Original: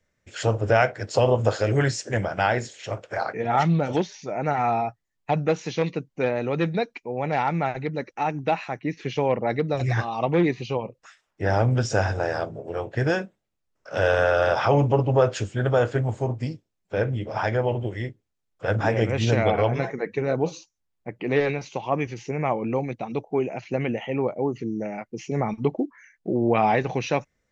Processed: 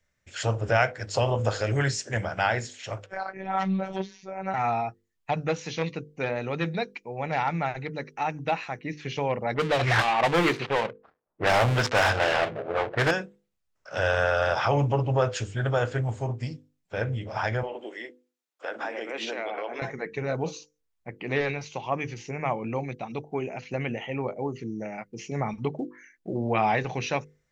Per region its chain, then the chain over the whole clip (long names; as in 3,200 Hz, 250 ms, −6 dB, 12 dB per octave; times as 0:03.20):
0:03.06–0:04.54: low-pass filter 2,500 Hz 6 dB per octave + phases set to zero 191 Hz
0:09.54–0:13.11: gap after every zero crossing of 0.22 ms + low-pass that shuts in the quiet parts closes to 390 Hz, open at −18.5 dBFS + mid-hump overdrive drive 20 dB, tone 3,200 Hz, clips at −8 dBFS
0:17.63–0:19.82: Butterworth high-pass 270 Hz + dynamic equaliser 6,600 Hz, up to −7 dB, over −52 dBFS, Q 1.2 + downward compressor, threshold −24 dBFS
whole clip: parametric band 350 Hz −6 dB 2.4 octaves; mains-hum notches 50/100/150/200/250/300/350/400/450/500 Hz